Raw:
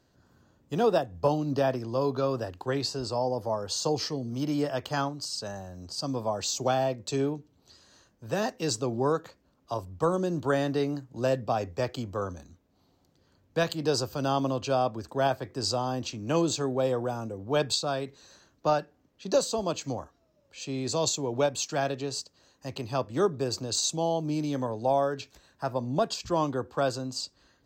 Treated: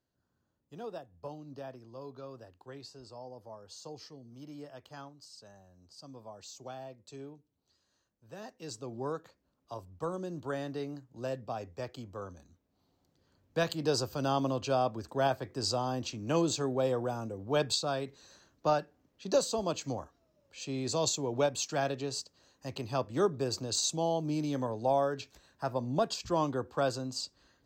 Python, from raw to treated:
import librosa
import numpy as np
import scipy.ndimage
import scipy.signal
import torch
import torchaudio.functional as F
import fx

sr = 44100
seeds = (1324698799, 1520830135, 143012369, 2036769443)

y = fx.gain(x, sr, db=fx.line((8.32, -18.0), (9.04, -10.0), (12.35, -10.0), (13.72, -3.0)))